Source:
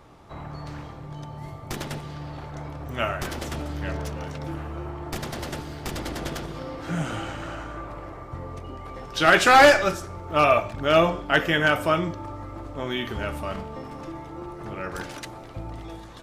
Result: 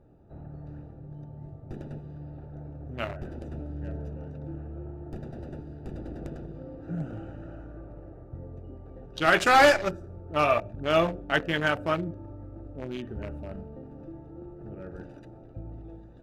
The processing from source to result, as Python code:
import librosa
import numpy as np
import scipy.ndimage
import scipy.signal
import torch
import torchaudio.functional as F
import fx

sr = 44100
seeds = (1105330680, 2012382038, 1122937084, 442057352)

y = fx.wiener(x, sr, points=41)
y = y * 10.0 ** (-4.0 / 20.0)